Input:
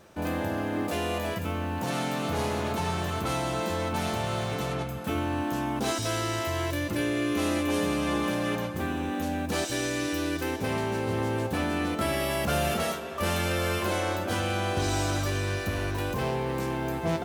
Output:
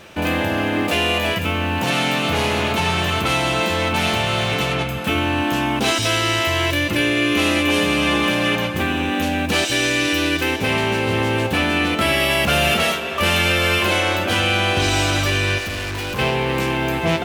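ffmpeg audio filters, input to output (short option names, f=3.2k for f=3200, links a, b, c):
-filter_complex "[0:a]equalizer=f=2.7k:t=o:w=1.1:g=11,asplit=2[a][b];[b]alimiter=limit=-21.5dB:level=0:latency=1:release=330,volume=-1dB[c];[a][c]amix=inputs=2:normalize=0,asettb=1/sr,asplit=3[d][e][f];[d]atrim=end=15.584[g];[e]atrim=start=15.58:end=16.19,asetpts=PTS-STARTPTS,afade=t=in:d=0.004:c=qsin,afade=t=out:st=0.606:d=0.004:c=qsin,asoftclip=type=hard:threshold=-28dB[h];[f]atrim=start=16.186[i];[g][h]acrossfade=d=0.004:c1=hsin:c2=qsin[j];[j][i]acrossfade=d=0.004:c1=qsin:c2=hsin,volume=4dB"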